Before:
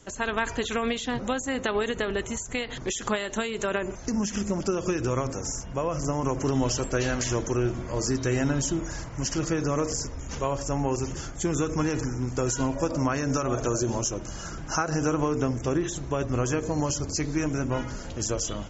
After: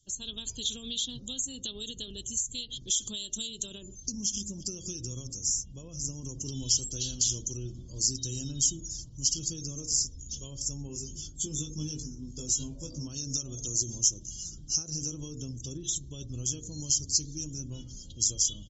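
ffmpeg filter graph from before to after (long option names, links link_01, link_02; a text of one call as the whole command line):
ffmpeg -i in.wav -filter_complex "[0:a]asettb=1/sr,asplit=3[link_01][link_02][link_03];[link_01]atrim=end=10.874[link_04];[link_02]atrim=start=10.87:end=13.07,asetpts=PTS-STARTPTS,afade=type=in:duration=0.004:curve=qsin,afade=type=out:start_time=2.196:duration=0.004:curve=qsin,highshelf=frequency=5300:gain=-7,asplit=2[link_05][link_06];[link_06]adelay=20,volume=-3dB[link_07];[link_05][link_07]amix=inputs=2:normalize=0,atrim=end_sample=97020[link_08];[link_03]atrim=start=13.066[link_09];[link_04][link_08]acrossfade=duration=0.004:curve1=hsin:curve2=qsin[link_10];[link_10][link_09]acrossfade=duration=0.004:curve1=qsin:curve2=hsin,afftdn=noise_reduction=18:noise_floor=-43,firequalizer=gain_entry='entry(120,0);entry(710,-23);entry(2100,-30);entry(3200,14)':delay=0.05:min_phase=1,volume=-8.5dB" out.wav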